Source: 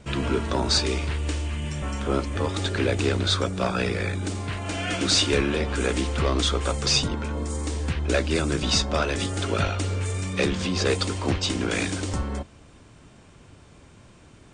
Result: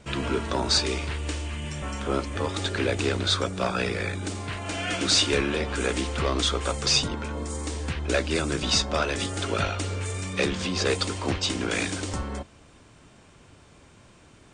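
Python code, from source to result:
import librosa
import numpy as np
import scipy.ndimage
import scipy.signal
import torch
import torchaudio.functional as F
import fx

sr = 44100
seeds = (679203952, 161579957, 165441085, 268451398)

y = fx.low_shelf(x, sr, hz=330.0, db=-4.5)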